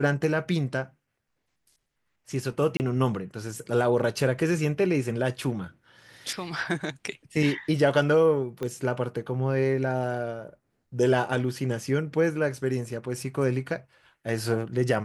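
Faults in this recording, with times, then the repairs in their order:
0:02.77–0:02.80: drop-out 29 ms
0:08.63: click −19 dBFS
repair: click removal
repair the gap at 0:02.77, 29 ms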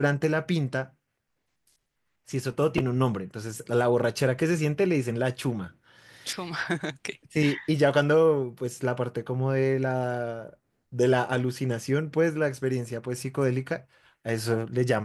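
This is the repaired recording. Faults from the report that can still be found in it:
0:08.63: click

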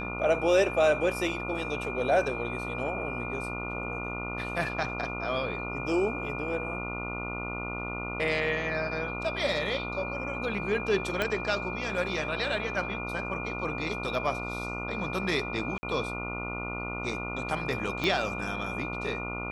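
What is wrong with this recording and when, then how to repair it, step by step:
mains buzz 60 Hz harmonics 24 −37 dBFS
whistle 2,400 Hz −36 dBFS
0:11.22: click −13 dBFS
0:15.78–0:15.83: drop-out 50 ms
0:18.04: click −16 dBFS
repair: click removal
hum removal 60 Hz, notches 24
notch filter 2,400 Hz, Q 30
repair the gap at 0:15.78, 50 ms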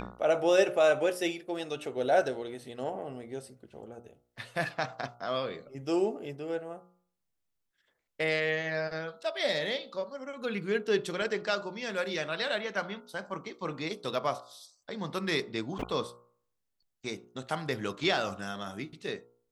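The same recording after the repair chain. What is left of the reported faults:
0:11.22: click
0:18.04: click

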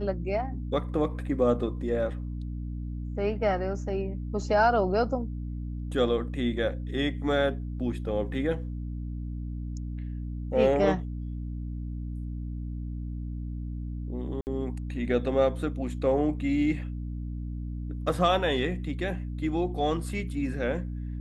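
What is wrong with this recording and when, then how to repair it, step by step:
mains hum 60 Hz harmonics 5 −34 dBFS
0:14.41–0:14.47: drop-out 59 ms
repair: hum removal 60 Hz, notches 5
repair the gap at 0:14.41, 59 ms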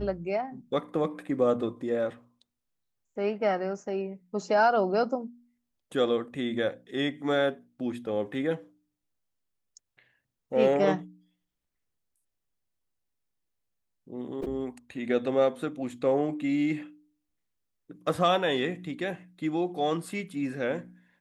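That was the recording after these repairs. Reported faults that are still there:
none of them is left

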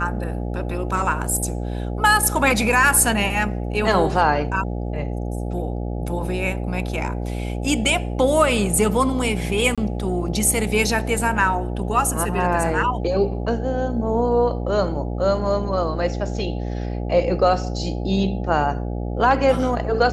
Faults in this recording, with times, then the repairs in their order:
mains buzz 60 Hz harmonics 14 −26 dBFS
0:09.75–0:09.78: drop-out 26 ms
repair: hum removal 60 Hz, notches 14
repair the gap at 0:09.75, 26 ms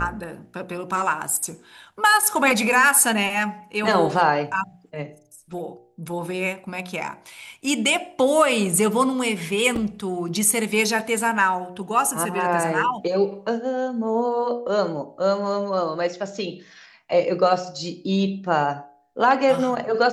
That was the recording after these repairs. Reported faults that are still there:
none of them is left

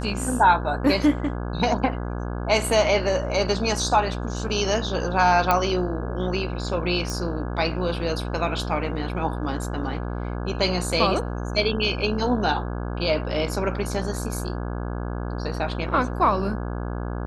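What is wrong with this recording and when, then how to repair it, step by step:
mains buzz 60 Hz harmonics 28 −29 dBFS
0:05.51: click −6 dBFS
0:07.10: click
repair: click removal
hum removal 60 Hz, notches 28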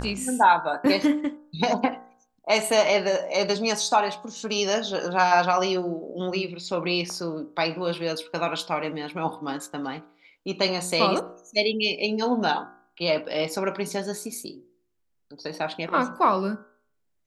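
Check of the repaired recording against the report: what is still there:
none of them is left

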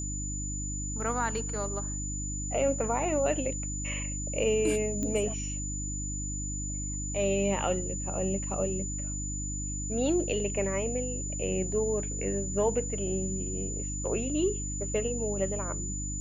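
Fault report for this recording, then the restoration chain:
mains hum 50 Hz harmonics 6 −36 dBFS
whistle 7,000 Hz −36 dBFS
0:05.03: click −21 dBFS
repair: click removal
notch filter 7,000 Hz, Q 30
hum removal 50 Hz, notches 6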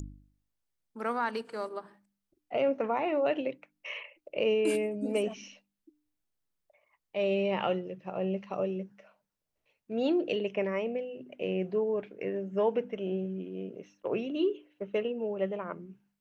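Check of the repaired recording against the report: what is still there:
none of them is left

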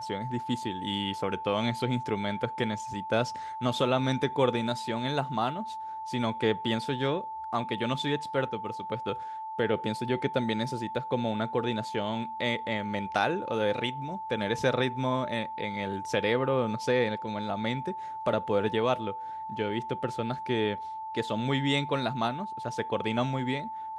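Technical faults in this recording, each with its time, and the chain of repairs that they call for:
whistle 880 Hz −35 dBFS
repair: notch filter 880 Hz, Q 30

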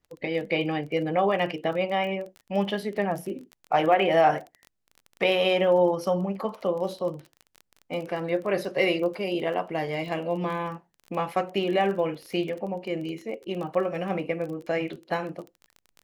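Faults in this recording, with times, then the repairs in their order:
surface crackle 22 per second −34 dBFS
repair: click removal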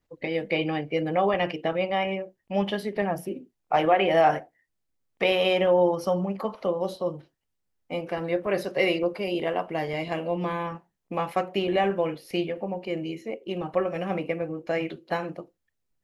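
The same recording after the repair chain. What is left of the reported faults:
none of them is left

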